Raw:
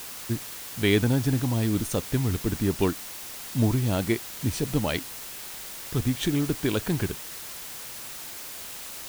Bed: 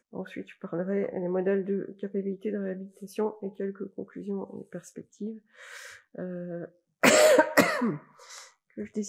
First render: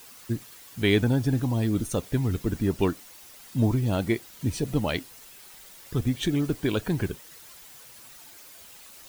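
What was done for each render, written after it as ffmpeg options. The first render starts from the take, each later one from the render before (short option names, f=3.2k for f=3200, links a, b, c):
-af "afftdn=nr=11:nf=-39"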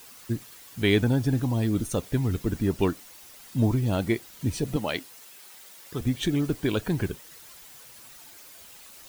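-filter_complex "[0:a]asettb=1/sr,asplit=3[a][b][c];[a]atrim=end=4.764[d];[b]atrim=start=4.76:end=6.01,asetpts=PTS-STARTPTS,afade=t=in:d=0.004:c=qsin,afade=t=out:st=1.246:d=0.004:c=qsin,highpass=f=290:p=1[e];[c]atrim=start=6.006[f];[d][e]acrossfade=d=0.004:c1=hsin:c2=qsin[g];[g][f]acrossfade=d=0.004:c1=qsin:c2=hsin"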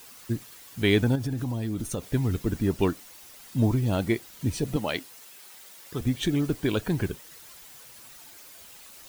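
-filter_complex "[0:a]asettb=1/sr,asplit=3[a][b][c];[a]atrim=end=1.154[d];[b]atrim=start=1.15:end=2.09,asetpts=PTS-STARTPTS,afade=t=in:d=0.004:c=qsin,afade=t=out:st=0.936:d=0.004:c=qsin,acompressor=threshold=-25dB:ratio=6:attack=3.2:release=140:knee=1:detection=peak[e];[c]atrim=start=2.086[f];[d][e]acrossfade=d=0.004:c1=hsin:c2=qsin[g];[g][f]acrossfade=d=0.004:c1=qsin:c2=hsin"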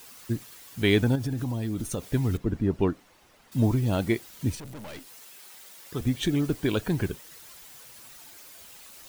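-filter_complex "[0:a]asettb=1/sr,asplit=3[a][b][c];[a]atrim=end=2.374[d];[b]atrim=start=2.37:end=3.52,asetpts=PTS-STARTPTS,afade=t=in:d=0.004:c=qsin,afade=t=out:st=1.146:d=0.004:c=qsin,lowpass=f=1.3k:p=1[e];[c]atrim=start=3.516[f];[d][e]acrossfade=d=0.004:c1=hsin:c2=qsin[g];[g][f]acrossfade=d=0.004:c1=qsin:c2=hsin,asettb=1/sr,asplit=3[h][i][j];[h]atrim=end=4.554[k];[i]atrim=start=4.55:end=5.07,asetpts=PTS-STARTPTS,afade=t=in:d=0.004:c=qsin,afade=t=out:st=0.516:d=0.004:c=qsin,aeval=exprs='(tanh(89.1*val(0)+0.5)-tanh(0.5))/89.1':c=same[l];[j]atrim=start=5.066[m];[k][l]acrossfade=d=0.004:c1=hsin:c2=qsin[n];[n][m]acrossfade=d=0.004:c1=qsin:c2=hsin"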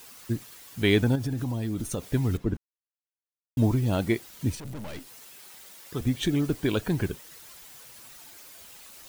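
-filter_complex "[0:a]asettb=1/sr,asplit=3[a][b][c];[a]atrim=end=4.654[d];[b]atrim=start=4.65:end=5.78,asetpts=PTS-STARTPTS,afade=t=in:d=0.004:c=qsin,afade=t=out:st=1.126:d=0.004:c=qsin,lowshelf=f=240:g=6.5[e];[c]atrim=start=5.776[f];[d][e]acrossfade=d=0.004:c1=hsin:c2=qsin[g];[g][f]acrossfade=d=0.004:c1=qsin:c2=hsin,asplit=3[h][i][j];[h]atrim=end=2.57,asetpts=PTS-STARTPTS,afade=t=out:st=2.566:d=0.004:c=hsin[k];[i]atrim=start=2.57:end=3.57,asetpts=PTS-STARTPTS,volume=0[l];[j]atrim=start=3.57,asetpts=PTS-STARTPTS,afade=t=in:d=0.004:c=hsin[m];[k][l][m]concat=n=3:v=0:a=1"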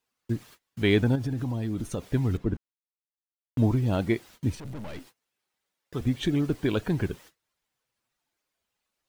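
-af "lowpass=f=3.5k:p=1,agate=range=-29dB:threshold=-48dB:ratio=16:detection=peak"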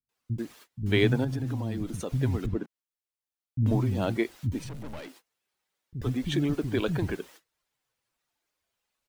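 -filter_complex "[0:a]acrossover=split=210[a][b];[b]adelay=90[c];[a][c]amix=inputs=2:normalize=0"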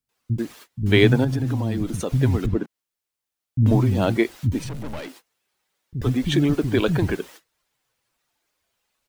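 -af "volume=7.5dB"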